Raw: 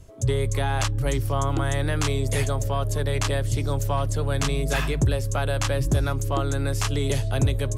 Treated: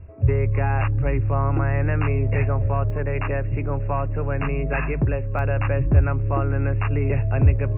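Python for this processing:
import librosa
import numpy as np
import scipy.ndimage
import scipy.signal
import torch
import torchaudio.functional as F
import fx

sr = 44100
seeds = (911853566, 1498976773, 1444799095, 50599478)

y = fx.brickwall_lowpass(x, sr, high_hz=2800.0)
y = fx.peak_eq(y, sr, hz=79.0, db=fx.steps((0.0, 13.5), (2.9, -4.5), (5.39, 12.5)), octaves=0.46)
y = y * 10.0 ** (1.0 / 20.0)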